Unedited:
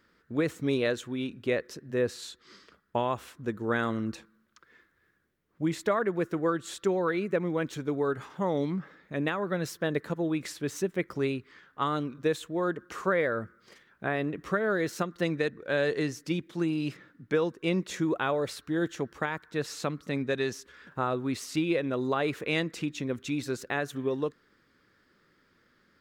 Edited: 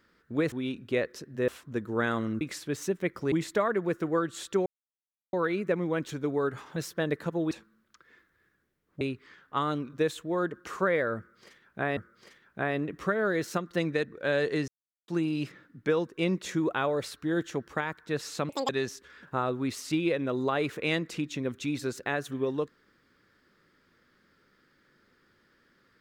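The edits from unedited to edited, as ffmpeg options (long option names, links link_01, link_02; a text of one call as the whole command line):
ffmpeg -i in.wav -filter_complex "[0:a]asplit=14[link_01][link_02][link_03][link_04][link_05][link_06][link_07][link_08][link_09][link_10][link_11][link_12][link_13][link_14];[link_01]atrim=end=0.522[link_15];[link_02]atrim=start=1.068:end=2.032[link_16];[link_03]atrim=start=3.198:end=4.132[link_17];[link_04]atrim=start=10.348:end=11.262[link_18];[link_05]atrim=start=5.628:end=6.97,asetpts=PTS-STARTPTS,afade=type=out:start_time=1.338:duration=0.004:curve=hsin,apad=pad_dur=0.67[link_19];[link_06]atrim=start=6.97:end=8.402,asetpts=PTS-STARTPTS,afade=type=in:duration=0.004:curve=hsin[link_20];[link_07]atrim=start=9.598:end=10.352[link_21];[link_08]atrim=start=4.128:end=5.632[link_22];[link_09]atrim=start=11.258:end=14.222[link_23];[link_10]atrim=start=13.418:end=16.13,asetpts=PTS-STARTPTS,afade=type=out:start_time=2.708:duration=0.004:curve=hsin[link_24];[link_11]atrim=start=16.13:end=16.53,asetpts=PTS-STARTPTS,volume=0[link_25];[link_12]atrim=start=16.53:end=19.944,asetpts=PTS-STARTPTS,afade=type=in:duration=0.004:curve=hsin[link_26];[link_13]atrim=start=19.94:end=20.33,asetpts=PTS-STARTPTS,asetrate=86436,aresample=44100[link_27];[link_14]atrim=start=20.326[link_28];[link_15][link_16]acrossfade=duration=0.004:curve1=hsin:curve2=hsin[link_29];[link_29][link_17]acrossfade=duration=0.004:curve1=hsin:curve2=hsin[link_30];[link_30][link_18]acrossfade=duration=0.004:curve1=hsin:curve2=hsin[link_31];[link_19][link_20]concat=n=2:v=0:a=1[link_32];[link_31][link_32]acrossfade=duration=0.004:curve1=hsin:curve2=hsin[link_33];[link_33][link_21]acrossfade=duration=0.004:curve1=hsin:curve2=hsin[link_34];[link_34][link_22]acrossfade=duration=0.004:curve1=hsin:curve2=hsin[link_35];[link_35][link_23]acrossfade=duration=0.004:curve1=hsin:curve2=hsin[link_36];[link_24][link_25][link_26]concat=n=3:v=0:a=1[link_37];[link_36][link_37]acrossfade=duration=0.004:curve1=hsin:curve2=hsin[link_38];[link_38][link_27]acrossfade=duration=0.004:curve1=hsin:curve2=hsin[link_39];[link_39][link_28]acrossfade=duration=0.004:curve1=hsin:curve2=hsin" out.wav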